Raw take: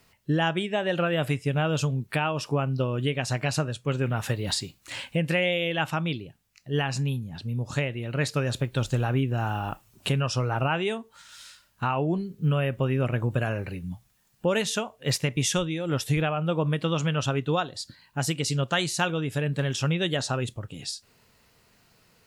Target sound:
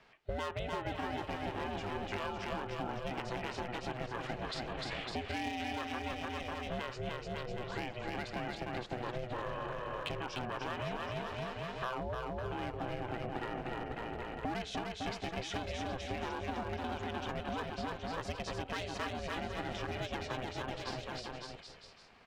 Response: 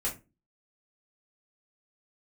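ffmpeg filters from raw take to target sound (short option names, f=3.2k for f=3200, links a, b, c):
-af "highpass=260,lowpass=2.8k,volume=23dB,asoftclip=hard,volume=-23dB,aecho=1:1:300|555|771.8|956|1113:0.631|0.398|0.251|0.158|0.1,acompressor=threshold=-39dB:ratio=5,aeval=exprs='val(0)*sin(2*PI*250*n/s)':c=same,volume=5dB"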